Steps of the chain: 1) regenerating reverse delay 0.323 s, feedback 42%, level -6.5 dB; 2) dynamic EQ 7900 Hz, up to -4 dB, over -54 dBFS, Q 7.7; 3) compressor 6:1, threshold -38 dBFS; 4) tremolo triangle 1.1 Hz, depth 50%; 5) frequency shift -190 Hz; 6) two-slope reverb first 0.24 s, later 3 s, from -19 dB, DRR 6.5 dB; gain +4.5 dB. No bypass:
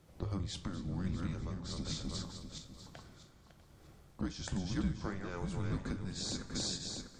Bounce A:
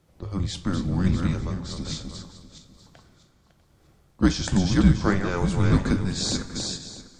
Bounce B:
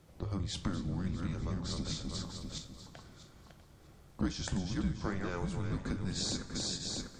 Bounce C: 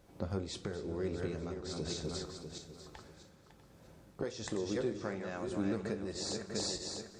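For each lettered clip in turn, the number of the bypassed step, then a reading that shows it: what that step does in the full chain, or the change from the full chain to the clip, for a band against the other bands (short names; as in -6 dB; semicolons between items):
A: 3, mean gain reduction 10.5 dB; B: 4, loudness change +2.5 LU; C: 5, 500 Hz band +9.5 dB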